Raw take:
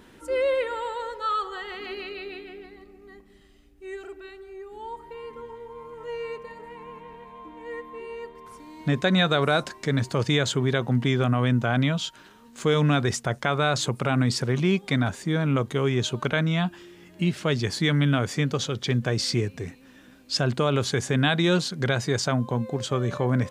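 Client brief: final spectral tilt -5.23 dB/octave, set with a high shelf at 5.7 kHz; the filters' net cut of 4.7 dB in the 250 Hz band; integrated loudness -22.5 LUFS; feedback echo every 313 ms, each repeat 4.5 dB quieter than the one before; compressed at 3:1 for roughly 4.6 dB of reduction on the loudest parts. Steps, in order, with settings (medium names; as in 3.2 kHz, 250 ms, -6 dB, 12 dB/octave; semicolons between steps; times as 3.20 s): peaking EQ 250 Hz -7 dB; treble shelf 5.7 kHz -7 dB; compression 3:1, threshold -26 dBFS; feedback delay 313 ms, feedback 60%, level -4.5 dB; trim +7 dB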